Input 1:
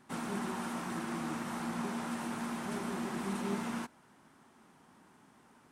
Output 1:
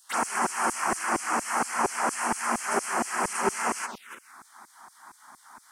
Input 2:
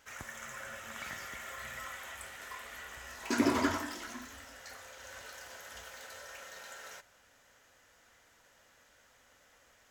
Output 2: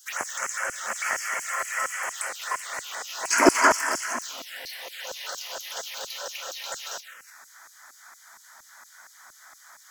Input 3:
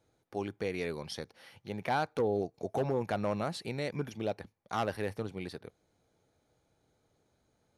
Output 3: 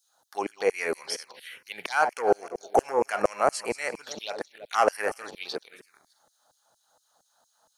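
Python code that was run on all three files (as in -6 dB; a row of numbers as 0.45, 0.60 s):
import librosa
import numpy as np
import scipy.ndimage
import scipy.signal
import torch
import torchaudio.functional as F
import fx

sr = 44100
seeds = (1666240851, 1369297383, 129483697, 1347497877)

y = fx.reverse_delay_fb(x, sr, ms=166, feedback_pct=42, wet_db=-12.5)
y = fx.filter_lfo_highpass(y, sr, shape='saw_down', hz=4.3, low_hz=410.0, high_hz=6100.0, q=0.93)
y = fx.env_phaser(y, sr, low_hz=370.0, high_hz=3700.0, full_db=-43.0)
y = y * 10.0 ** (-30 / 20.0) / np.sqrt(np.mean(np.square(y)))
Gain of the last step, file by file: +18.0, +18.5, +15.0 dB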